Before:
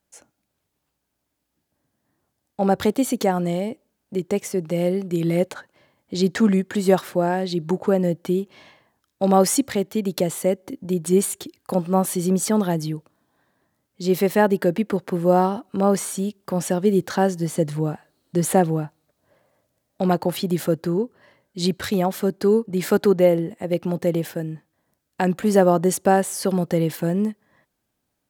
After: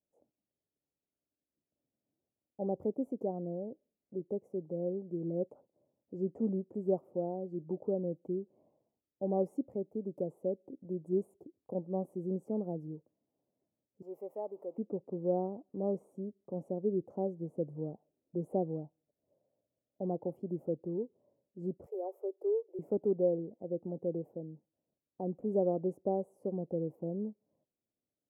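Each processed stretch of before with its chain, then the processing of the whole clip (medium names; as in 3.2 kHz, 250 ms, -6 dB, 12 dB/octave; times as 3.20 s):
14.02–14.78 s: jump at every zero crossing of -31.5 dBFS + high-pass 730 Hz + band-stop 1.5 kHz, Q 10
21.86–22.79 s: steep high-pass 360 Hz 72 dB/octave + treble shelf 10 kHz +10 dB
whole clip: inverse Chebyshev low-pass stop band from 1.5 kHz, stop band 50 dB; tilt EQ +3.5 dB/octave; trim -8 dB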